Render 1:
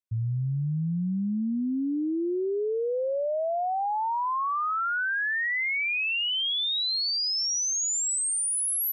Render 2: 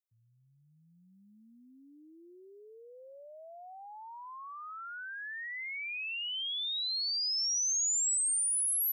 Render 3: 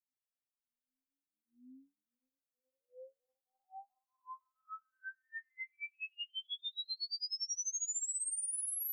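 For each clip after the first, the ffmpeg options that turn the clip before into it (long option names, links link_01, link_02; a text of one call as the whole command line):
ffmpeg -i in.wav -af "aderivative,dynaudnorm=framelen=280:gausssize=7:maxgain=4dB,volume=-5.5dB" out.wav
ffmpeg -i in.wav -af "afftfilt=real='re*3.46*eq(mod(b,12),0)':imag='im*3.46*eq(mod(b,12),0)':win_size=2048:overlap=0.75,volume=-6dB" out.wav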